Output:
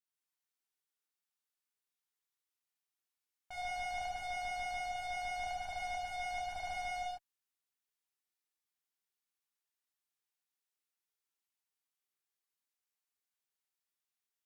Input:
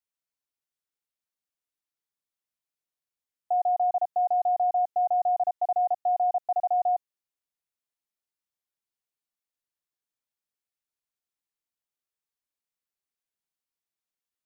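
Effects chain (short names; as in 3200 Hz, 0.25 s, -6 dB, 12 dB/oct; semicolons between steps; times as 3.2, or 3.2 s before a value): HPF 440 Hz 6 dB/oct; bell 590 Hz -13 dB 0.26 oct; tube stage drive 41 dB, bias 0.75; non-linear reverb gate 0.23 s flat, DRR -7 dB; gain -3 dB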